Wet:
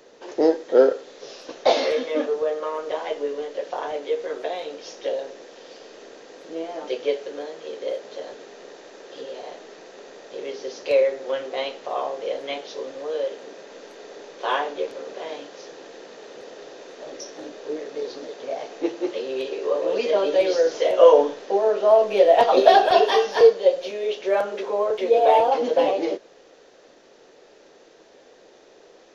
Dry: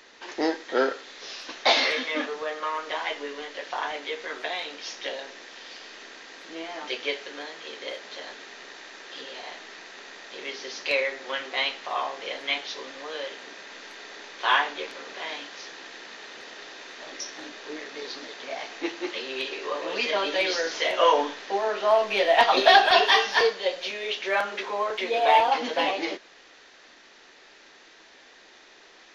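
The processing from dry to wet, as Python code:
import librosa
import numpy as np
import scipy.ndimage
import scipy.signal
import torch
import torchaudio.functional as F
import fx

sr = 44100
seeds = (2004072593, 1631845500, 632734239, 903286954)

y = fx.graphic_eq(x, sr, hz=(125, 500, 1000, 2000, 4000), db=(8, 12, -3, -8, -5))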